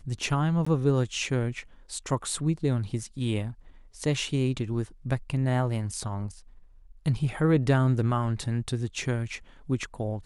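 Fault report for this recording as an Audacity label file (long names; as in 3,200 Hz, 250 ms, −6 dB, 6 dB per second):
0.650000	0.670000	drop-out 15 ms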